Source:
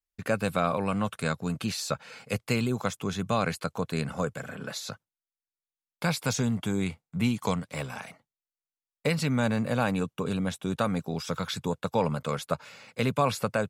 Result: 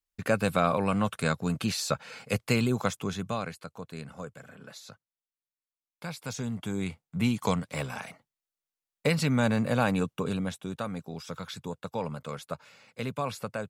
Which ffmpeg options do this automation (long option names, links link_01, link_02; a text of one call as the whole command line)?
ffmpeg -i in.wav -af "volume=13dB,afade=type=out:start_time=2.83:duration=0.71:silence=0.251189,afade=type=in:start_time=6.16:duration=1.35:silence=0.266073,afade=type=out:start_time=10.1:duration=0.66:silence=0.398107" out.wav